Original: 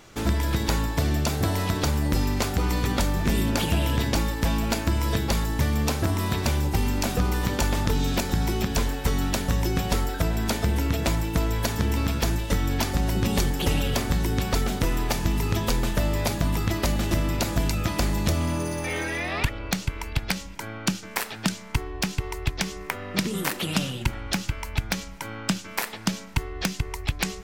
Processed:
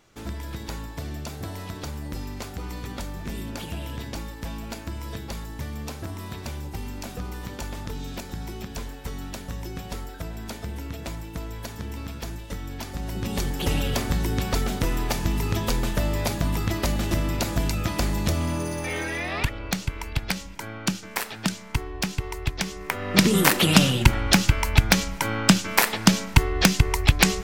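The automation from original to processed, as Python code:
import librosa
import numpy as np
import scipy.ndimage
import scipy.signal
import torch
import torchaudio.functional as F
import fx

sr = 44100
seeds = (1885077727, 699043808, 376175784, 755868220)

y = fx.gain(x, sr, db=fx.line((12.79, -10.0), (13.74, -0.5), (22.78, -0.5), (23.25, 9.0)))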